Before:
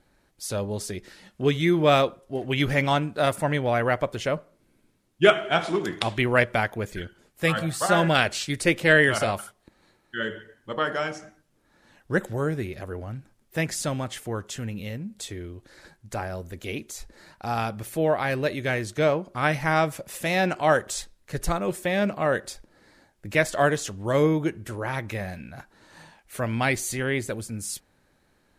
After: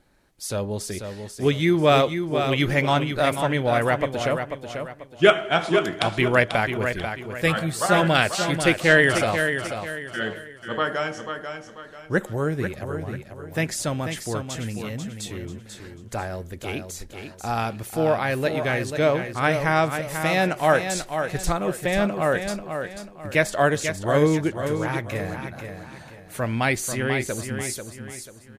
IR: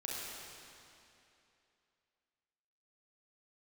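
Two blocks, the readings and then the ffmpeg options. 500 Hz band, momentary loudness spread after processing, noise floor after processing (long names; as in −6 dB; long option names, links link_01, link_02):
+2.5 dB, 16 LU, −45 dBFS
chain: -af "aecho=1:1:490|980|1470|1960:0.422|0.148|0.0517|0.0181,volume=1.5dB"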